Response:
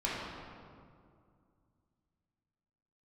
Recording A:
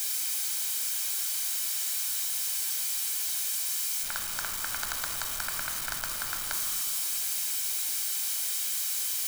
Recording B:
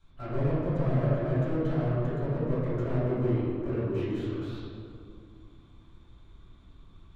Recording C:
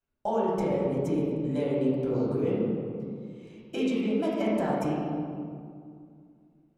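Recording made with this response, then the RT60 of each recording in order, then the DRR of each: C; 2.3, 2.2, 2.2 seconds; 2.0, −13.0, −8.0 decibels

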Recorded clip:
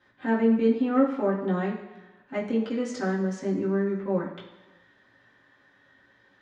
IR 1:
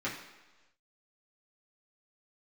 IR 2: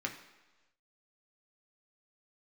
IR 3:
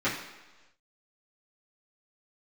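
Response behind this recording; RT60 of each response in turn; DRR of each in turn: 1; 1.2, 1.2, 1.2 seconds; −8.0, 1.0, −12.5 decibels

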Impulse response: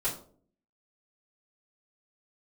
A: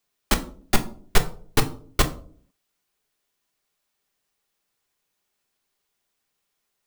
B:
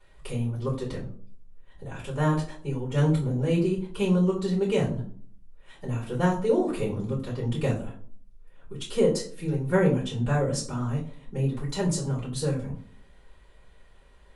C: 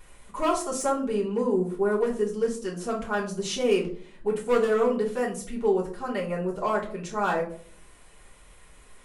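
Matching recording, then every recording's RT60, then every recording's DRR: B; 0.50, 0.50, 0.50 seconds; 5.0, −11.0, −4.5 decibels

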